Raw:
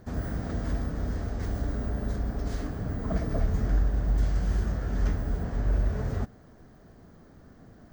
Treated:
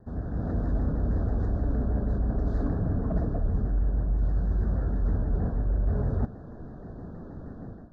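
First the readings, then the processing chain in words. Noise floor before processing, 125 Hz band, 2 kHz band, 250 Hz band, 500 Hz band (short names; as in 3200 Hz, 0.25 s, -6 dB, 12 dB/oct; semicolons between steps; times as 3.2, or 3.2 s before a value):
-53 dBFS, +2.0 dB, -6.0 dB, +2.5 dB, +1.0 dB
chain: AGC gain up to 15 dB; elliptic band-stop 1700–3600 Hz, stop band 40 dB; high shelf 2200 Hz -11 dB; reverse; compressor 6:1, threshold -19 dBFS, peak gain reduction 12 dB; reverse; tape spacing loss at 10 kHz 21 dB; in parallel at -9.5 dB: soft clip -27.5 dBFS, distortion -8 dB; on the sum: shaped vibrato saw down 6.3 Hz, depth 100 cents; gain -4.5 dB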